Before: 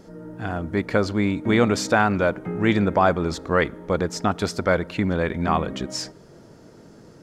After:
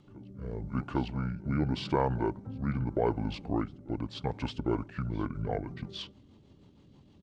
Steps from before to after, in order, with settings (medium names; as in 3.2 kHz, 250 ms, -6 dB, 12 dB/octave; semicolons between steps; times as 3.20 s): pitch shift -8 st; reverse echo 805 ms -20.5 dB; rotary cabinet horn 0.85 Hz, later 6.3 Hz, at 4.30 s; trim -8.5 dB